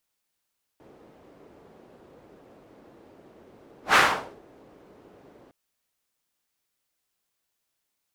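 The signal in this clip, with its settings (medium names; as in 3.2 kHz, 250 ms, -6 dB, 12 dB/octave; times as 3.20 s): whoosh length 4.71 s, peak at 3.15 s, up 0.13 s, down 0.49 s, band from 410 Hz, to 1.5 kHz, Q 1.3, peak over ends 36 dB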